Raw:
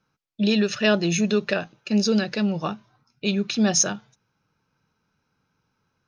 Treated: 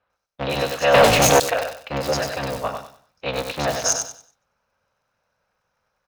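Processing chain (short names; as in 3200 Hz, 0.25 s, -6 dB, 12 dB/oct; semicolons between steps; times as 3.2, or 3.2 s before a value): cycle switcher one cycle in 3, inverted; on a send: feedback echo 95 ms, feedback 28%, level -6 dB; 0.94–1.4 on the sum: sample leveller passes 5; resonant low shelf 430 Hz -7.5 dB, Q 3; bands offset in time lows, highs 0.1 s, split 3900 Hz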